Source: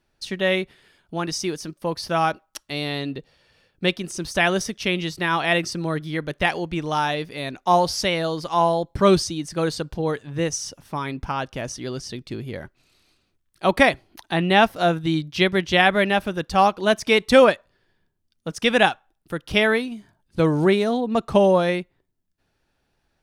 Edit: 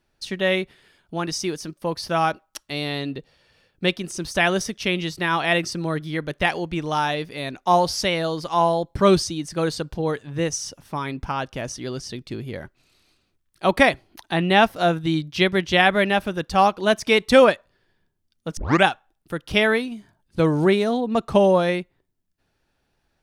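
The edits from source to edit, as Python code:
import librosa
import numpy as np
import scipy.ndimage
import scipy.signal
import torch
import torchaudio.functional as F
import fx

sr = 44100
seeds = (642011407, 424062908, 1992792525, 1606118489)

y = fx.edit(x, sr, fx.tape_start(start_s=18.57, length_s=0.27), tone=tone)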